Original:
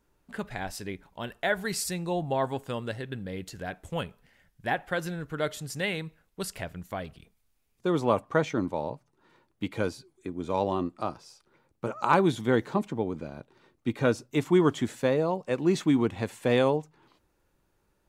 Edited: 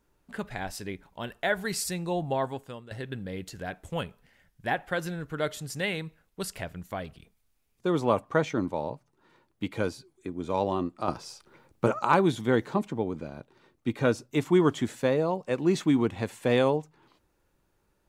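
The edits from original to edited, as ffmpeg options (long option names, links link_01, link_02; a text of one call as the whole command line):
ffmpeg -i in.wav -filter_complex "[0:a]asplit=4[link_01][link_02][link_03][link_04];[link_01]atrim=end=2.91,asetpts=PTS-STARTPTS,afade=type=out:start_time=2.32:duration=0.59:silence=0.149624[link_05];[link_02]atrim=start=2.91:end=11.082,asetpts=PTS-STARTPTS,afade=type=in:duration=0.004:curve=hsin:silence=0.149624[link_06];[link_03]atrim=start=11.078:end=11.992,asetpts=PTS-STARTPTS,volume=8dB[link_07];[link_04]atrim=start=11.988[link_08];[link_05][link_06]concat=n=2:v=0:a=1[link_09];[link_09][link_07]acrossfade=duration=0.004:curve1=hsin:curve2=hsin[link_10];[link_10][link_08]acrossfade=duration=0.004:curve1=hsin:curve2=hsin" out.wav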